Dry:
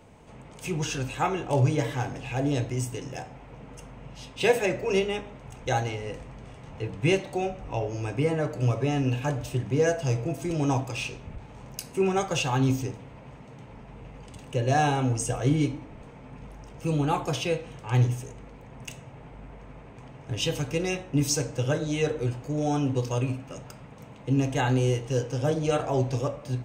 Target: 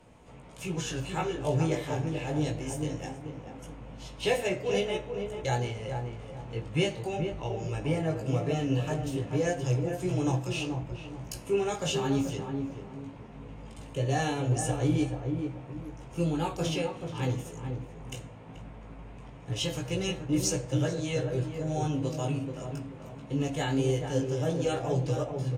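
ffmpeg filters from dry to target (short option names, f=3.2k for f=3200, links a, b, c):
-filter_complex "[0:a]acrossover=split=810|1400[a][b][c];[b]acompressor=threshold=-50dB:ratio=6[d];[a][d][c]amix=inputs=3:normalize=0,flanger=delay=17:depth=2.9:speed=0.19,asetrate=45938,aresample=44100,asplit=2[e][f];[f]adelay=433,lowpass=f=1.1k:p=1,volume=-5dB,asplit=2[g][h];[h]adelay=433,lowpass=f=1.1k:p=1,volume=0.35,asplit=2[i][j];[j]adelay=433,lowpass=f=1.1k:p=1,volume=0.35,asplit=2[k][l];[l]adelay=433,lowpass=f=1.1k:p=1,volume=0.35[m];[e][g][i][k][m]amix=inputs=5:normalize=0" -ar 32000 -c:a aac -b:a 64k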